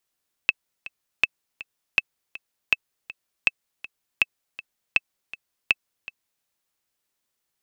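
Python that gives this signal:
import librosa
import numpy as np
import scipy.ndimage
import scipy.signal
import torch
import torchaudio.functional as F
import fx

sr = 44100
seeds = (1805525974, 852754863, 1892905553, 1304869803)

y = fx.click_track(sr, bpm=161, beats=2, bars=8, hz=2620.0, accent_db=18.0, level_db=-4.0)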